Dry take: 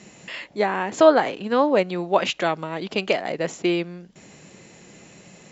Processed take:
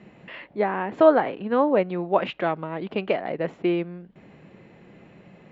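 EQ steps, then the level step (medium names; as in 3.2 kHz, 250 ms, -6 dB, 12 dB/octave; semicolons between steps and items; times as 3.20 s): distance through air 500 m; 0.0 dB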